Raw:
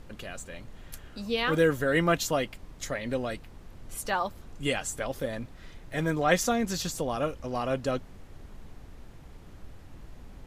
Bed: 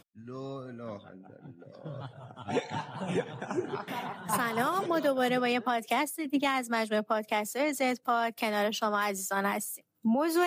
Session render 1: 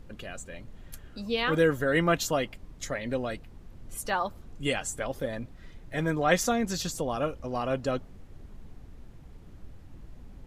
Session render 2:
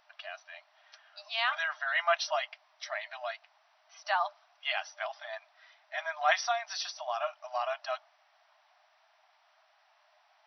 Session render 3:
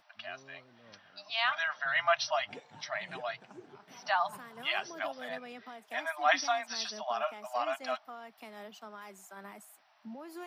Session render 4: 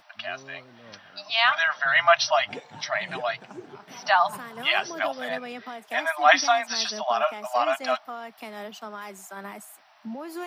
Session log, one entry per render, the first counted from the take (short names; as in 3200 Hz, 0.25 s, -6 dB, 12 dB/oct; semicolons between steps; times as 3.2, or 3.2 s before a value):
denoiser 6 dB, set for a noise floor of -49 dBFS
FFT band-pass 600–6000 Hz
add bed -18.5 dB
gain +9.5 dB